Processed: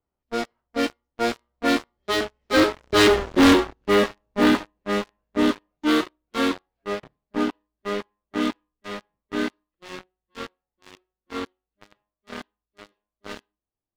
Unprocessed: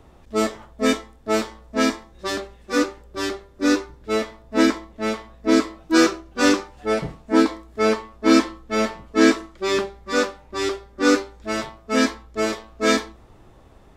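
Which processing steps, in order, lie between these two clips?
knee-point frequency compression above 1.9 kHz 1.5:1; Doppler pass-by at 3.23 s, 24 m/s, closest 3.5 m; bass shelf 130 Hz -4 dB; waveshaping leveller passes 5; trim +3.5 dB

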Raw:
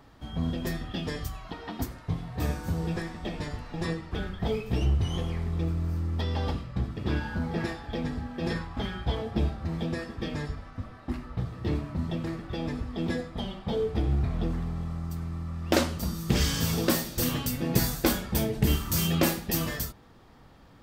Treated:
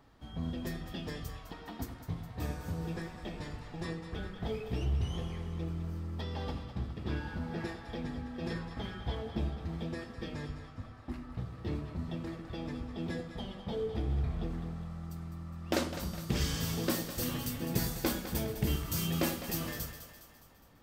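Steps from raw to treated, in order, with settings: two-band feedback delay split 500 Hz, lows 101 ms, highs 206 ms, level -10 dB; trim -7.5 dB

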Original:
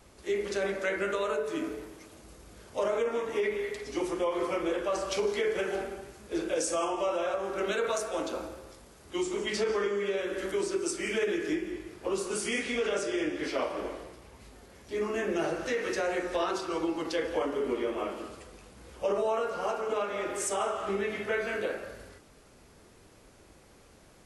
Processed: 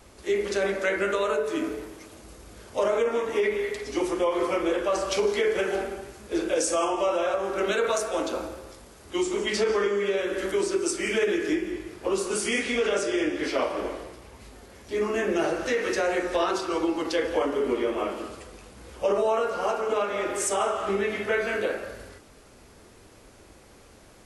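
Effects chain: peaking EQ 160 Hz -6.5 dB 0.23 oct; trim +5 dB

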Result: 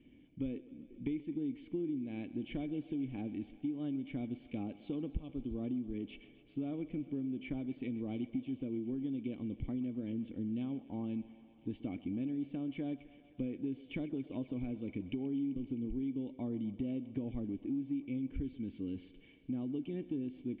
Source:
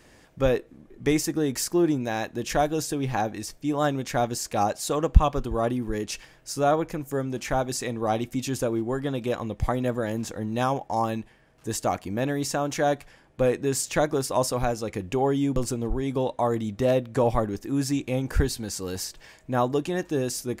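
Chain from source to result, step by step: cascade formant filter i; compression, threshold -38 dBFS, peak gain reduction 17 dB; thinning echo 130 ms, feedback 84%, high-pass 240 Hz, level -17 dB; trim +3 dB

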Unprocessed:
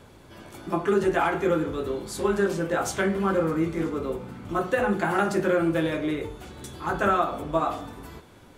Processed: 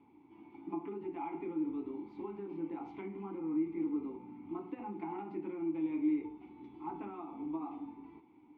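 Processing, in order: compression 4:1, threshold -25 dBFS, peak gain reduction 7.5 dB; vowel filter u; distance through air 340 m; trim +1 dB

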